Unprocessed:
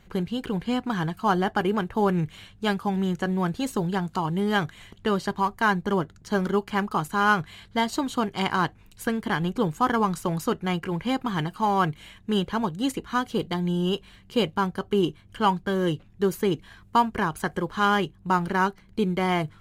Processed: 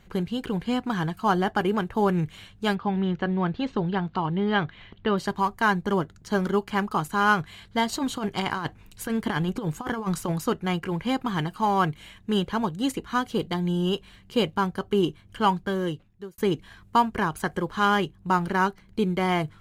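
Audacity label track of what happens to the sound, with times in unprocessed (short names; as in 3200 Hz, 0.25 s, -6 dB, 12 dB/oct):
2.750000	5.180000	LPF 3900 Hz 24 dB/oct
7.890000	10.320000	negative-ratio compressor -26 dBFS, ratio -0.5
15.600000	16.380000	fade out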